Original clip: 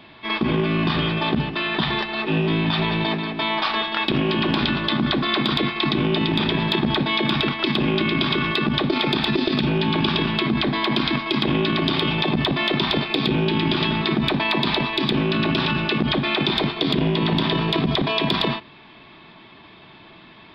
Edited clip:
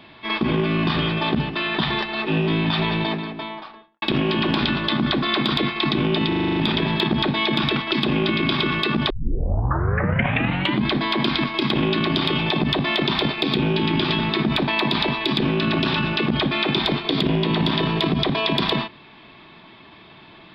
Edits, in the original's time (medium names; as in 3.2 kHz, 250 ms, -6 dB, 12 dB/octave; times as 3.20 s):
2.90–4.02 s: studio fade out
6.28 s: stutter 0.04 s, 8 plays
8.82 s: tape start 1.78 s